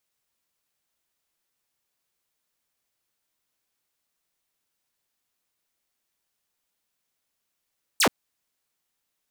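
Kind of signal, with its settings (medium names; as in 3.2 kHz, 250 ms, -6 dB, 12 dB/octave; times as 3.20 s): laser zap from 10 kHz, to 170 Hz, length 0.08 s saw, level -14 dB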